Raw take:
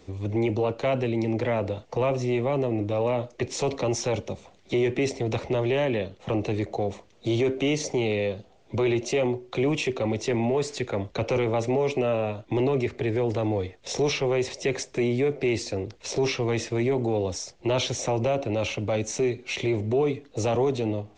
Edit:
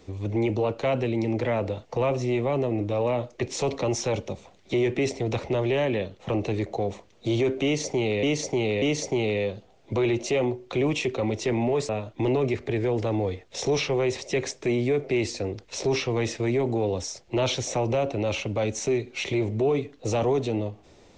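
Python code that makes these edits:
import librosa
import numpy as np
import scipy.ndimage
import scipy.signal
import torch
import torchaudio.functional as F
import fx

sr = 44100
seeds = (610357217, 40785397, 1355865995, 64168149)

y = fx.edit(x, sr, fx.repeat(start_s=7.64, length_s=0.59, count=3),
    fx.cut(start_s=10.71, length_s=1.5), tone=tone)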